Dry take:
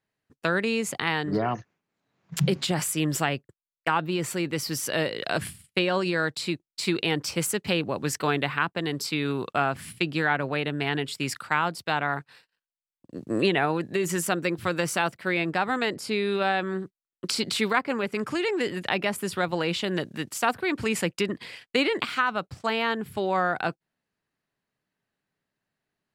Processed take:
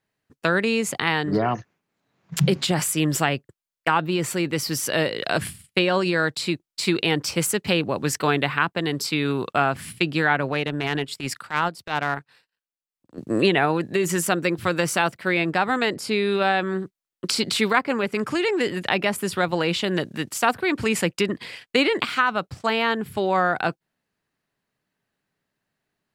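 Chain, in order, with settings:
0:10.52–0:13.18: transient designer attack −12 dB, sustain −8 dB
level +4 dB

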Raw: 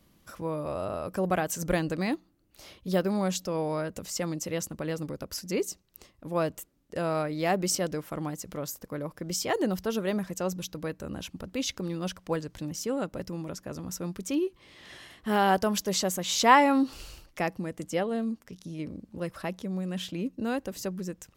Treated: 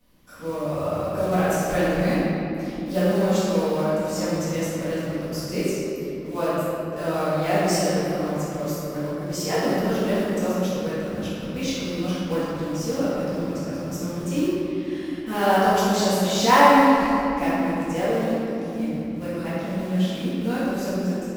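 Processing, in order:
floating-point word with a short mantissa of 2 bits
rectangular room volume 160 cubic metres, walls hard, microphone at 1.9 metres
level −7 dB

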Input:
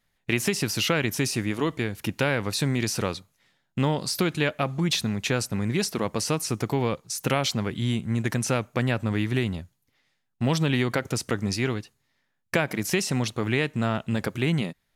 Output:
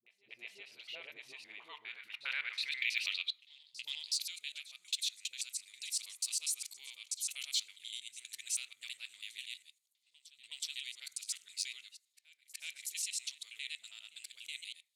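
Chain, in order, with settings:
reversed piece by piece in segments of 81 ms
flat-topped bell 3,000 Hz +15 dB 1.3 octaves
automatic gain control gain up to 4.5 dB
band-pass filter sweep 610 Hz → 7,700 Hz, 0:01.20–0:04.31
backwards echo 371 ms −18.5 dB
on a send at −10 dB: convolution reverb RT60 0.55 s, pre-delay 4 ms
on the sum: de-essing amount 50%
first-order pre-emphasis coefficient 0.97
all-pass dispersion highs, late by 66 ms, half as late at 380 Hz
level −1 dB

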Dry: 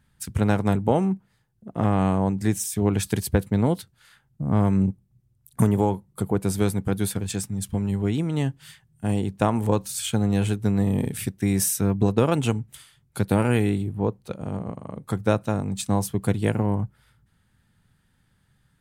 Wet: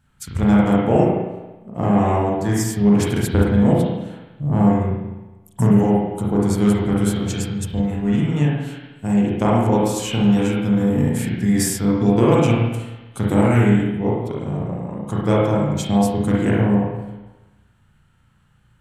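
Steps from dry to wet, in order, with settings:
pitch vibrato 2.9 Hz 7.9 cents
spring reverb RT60 1.1 s, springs 34/54 ms, chirp 20 ms, DRR −5.5 dB
formants moved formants −2 semitones

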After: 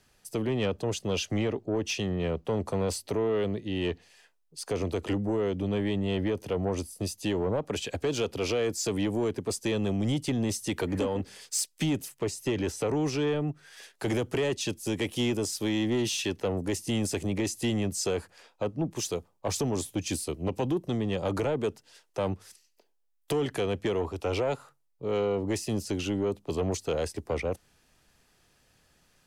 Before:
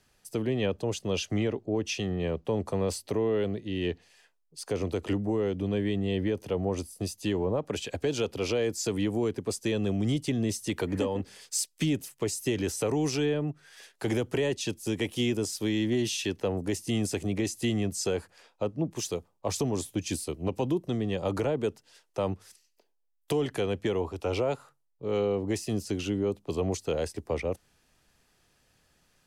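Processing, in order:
0:12.19–0:13.27: high-shelf EQ 5,400 Hz −10 dB
soft clipping −22.5 dBFS, distortion −16 dB
level +2 dB

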